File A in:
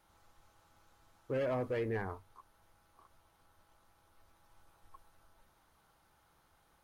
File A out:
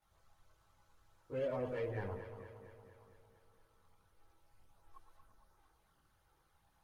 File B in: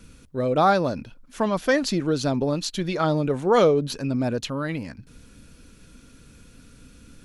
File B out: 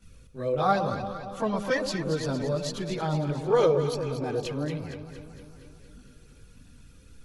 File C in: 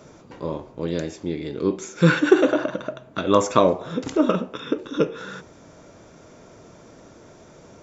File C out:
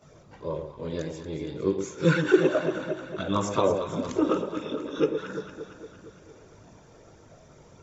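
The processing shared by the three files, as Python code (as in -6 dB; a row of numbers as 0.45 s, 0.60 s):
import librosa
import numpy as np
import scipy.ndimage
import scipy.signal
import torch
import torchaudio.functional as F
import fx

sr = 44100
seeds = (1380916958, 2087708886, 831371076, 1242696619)

p1 = fx.chorus_voices(x, sr, voices=4, hz=0.73, base_ms=20, depth_ms=1.3, mix_pct=70)
p2 = p1 + fx.echo_alternate(p1, sr, ms=115, hz=940.0, feedback_pct=77, wet_db=-7.0, dry=0)
y = p2 * 10.0 ** (-4.0 / 20.0)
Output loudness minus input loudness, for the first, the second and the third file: -4.5 LU, -5.0 LU, -5.0 LU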